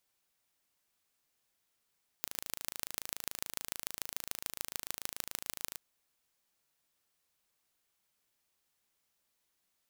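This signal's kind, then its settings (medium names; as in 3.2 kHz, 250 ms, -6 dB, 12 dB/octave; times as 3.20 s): pulse train 27 per s, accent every 4, -7 dBFS 3.53 s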